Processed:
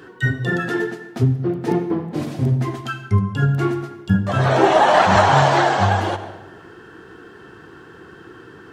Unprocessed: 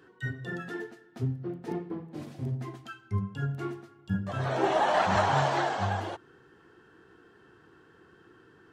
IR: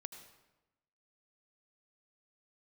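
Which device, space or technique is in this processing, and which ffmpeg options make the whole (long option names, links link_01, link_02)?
ducked reverb: -filter_complex "[0:a]asplit=3[link_01][link_02][link_03];[1:a]atrim=start_sample=2205[link_04];[link_02][link_04]afir=irnorm=-1:irlink=0[link_05];[link_03]apad=whole_len=384943[link_06];[link_05][link_06]sidechaincompress=threshold=-30dB:ratio=8:attack=42:release=782,volume=7.5dB[link_07];[link_01][link_07]amix=inputs=2:normalize=0,volume=8dB"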